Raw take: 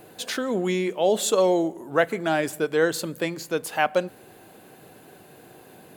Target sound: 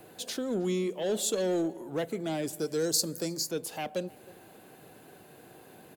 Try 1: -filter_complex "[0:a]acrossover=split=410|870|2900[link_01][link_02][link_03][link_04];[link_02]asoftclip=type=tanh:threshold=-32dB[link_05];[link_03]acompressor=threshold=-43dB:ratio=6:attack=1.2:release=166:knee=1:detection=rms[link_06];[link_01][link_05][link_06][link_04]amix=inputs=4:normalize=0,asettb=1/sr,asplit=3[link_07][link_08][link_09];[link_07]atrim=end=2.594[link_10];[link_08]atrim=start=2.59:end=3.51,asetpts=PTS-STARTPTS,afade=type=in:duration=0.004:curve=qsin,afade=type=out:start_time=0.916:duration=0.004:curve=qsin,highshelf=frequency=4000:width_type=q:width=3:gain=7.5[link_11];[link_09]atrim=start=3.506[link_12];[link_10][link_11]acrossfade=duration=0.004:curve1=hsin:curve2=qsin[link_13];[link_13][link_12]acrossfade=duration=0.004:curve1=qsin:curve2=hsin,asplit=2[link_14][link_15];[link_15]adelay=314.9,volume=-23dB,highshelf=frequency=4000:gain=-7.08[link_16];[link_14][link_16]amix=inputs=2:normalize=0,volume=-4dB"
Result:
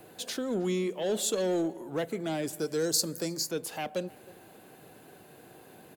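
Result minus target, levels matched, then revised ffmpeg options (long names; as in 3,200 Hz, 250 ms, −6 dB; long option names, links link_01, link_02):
downward compressor: peak gain reduction −6 dB
-filter_complex "[0:a]acrossover=split=410|870|2900[link_01][link_02][link_03][link_04];[link_02]asoftclip=type=tanh:threshold=-32dB[link_05];[link_03]acompressor=threshold=-50.5dB:ratio=6:attack=1.2:release=166:knee=1:detection=rms[link_06];[link_01][link_05][link_06][link_04]amix=inputs=4:normalize=0,asettb=1/sr,asplit=3[link_07][link_08][link_09];[link_07]atrim=end=2.594[link_10];[link_08]atrim=start=2.59:end=3.51,asetpts=PTS-STARTPTS,afade=type=in:duration=0.004:curve=qsin,afade=type=out:start_time=0.916:duration=0.004:curve=qsin,highshelf=frequency=4000:width_type=q:width=3:gain=7.5[link_11];[link_09]atrim=start=3.506[link_12];[link_10][link_11]acrossfade=duration=0.004:curve1=hsin:curve2=qsin[link_13];[link_13][link_12]acrossfade=duration=0.004:curve1=qsin:curve2=hsin,asplit=2[link_14][link_15];[link_15]adelay=314.9,volume=-23dB,highshelf=frequency=4000:gain=-7.08[link_16];[link_14][link_16]amix=inputs=2:normalize=0,volume=-4dB"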